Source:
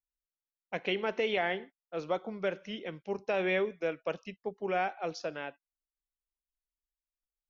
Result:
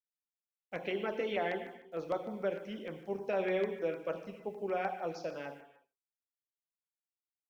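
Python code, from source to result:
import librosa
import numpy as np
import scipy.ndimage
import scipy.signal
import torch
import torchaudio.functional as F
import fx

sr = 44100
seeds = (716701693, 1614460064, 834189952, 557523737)

y = fx.peak_eq(x, sr, hz=5100.0, db=-6.5, octaves=2.9)
y = fx.hum_notches(y, sr, base_hz=60, count=7)
y = y + 10.0 ** (-20.5 / 20.0) * np.pad(y, (int(84 * sr / 1000.0), 0))[:len(y)]
y = fx.quant_dither(y, sr, seeds[0], bits=12, dither='none')
y = fx.rev_gated(y, sr, seeds[1], gate_ms=370, shape='falling', drr_db=5.5)
y = fx.filter_lfo_notch(y, sr, shape='saw_down', hz=6.6, low_hz=720.0, high_hz=4000.0, q=1.7)
y = y * librosa.db_to_amplitude(-1.5)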